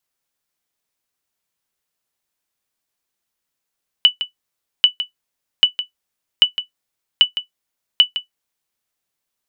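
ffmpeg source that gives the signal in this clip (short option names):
-f lavfi -i "aevalsrc='0.891*(sin(2*PI*2970*mod(t,0.79))*exp(-6.91*mod(t,0.79)/0.12)+0.251*sin(2*PI*2970*max(mod(t,0.79)-0.16,0))*exp(-6.91*max(mod(t,0.79)-0.16,0)/0.12))':d=4.74:s=44100"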